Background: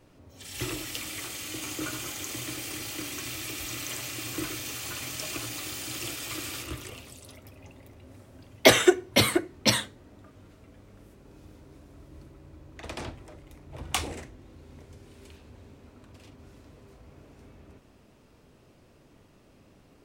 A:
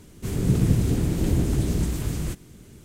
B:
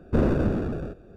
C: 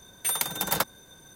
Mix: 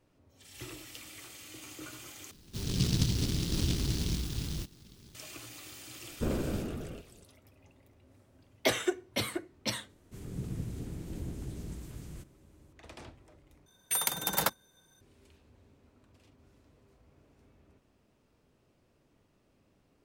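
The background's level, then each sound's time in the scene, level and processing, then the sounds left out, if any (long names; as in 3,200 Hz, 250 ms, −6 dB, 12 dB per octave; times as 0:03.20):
background −11.5 dB
0:02.31: overwrite with A −8.5 dB + short delay modulated by noise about 4,200 Hz, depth 0.33 ms
0:06.08: mix in B −10.5 dB
0:09.89: mix in A −17.5 dB
0:13.66: overwrite with C −3 dB + noise gate −40 dBFS, range −10 dB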